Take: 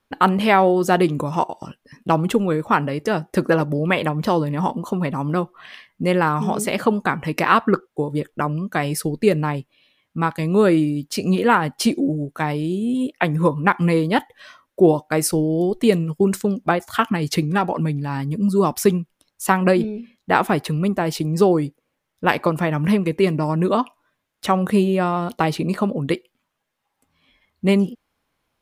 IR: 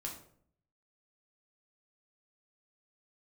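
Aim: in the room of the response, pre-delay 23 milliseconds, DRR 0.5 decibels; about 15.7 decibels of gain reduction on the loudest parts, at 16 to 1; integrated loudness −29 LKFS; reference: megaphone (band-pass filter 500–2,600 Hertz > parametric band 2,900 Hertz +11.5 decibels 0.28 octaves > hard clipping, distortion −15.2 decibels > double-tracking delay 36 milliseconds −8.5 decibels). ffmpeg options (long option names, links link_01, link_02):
-filter_complex "[0:a]acompressor=threshold=-25dB:ratio=16,asplit=2[link_01][link_02];[1:a]atrim=start_sample=2205,adelay=23[link_03];[link_02][link_03]afir=irnorm=-1:irlink=0,volume=0.5dB[link_04];[link_01][link_04]amix=inputs=2:normalize=0,highpass=500,lowpass=2600,equalizer=frequency=2900:width_type=o:width=0.28:gain=11.5,asoftclip=type=hard:threshold=-23dB,asplit=2[link_05][link_06];[link_06]adelay=36,volume=-8.5dB[link_07];[link_05][link_07]amix=inputs=2:normalize=0,volume=3.5dB"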